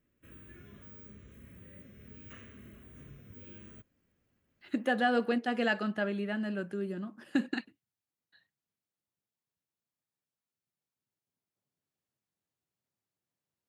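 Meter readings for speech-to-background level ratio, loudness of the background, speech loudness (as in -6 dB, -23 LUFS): 19.5 dB, -52.0 LUFS, -32.5 LUFS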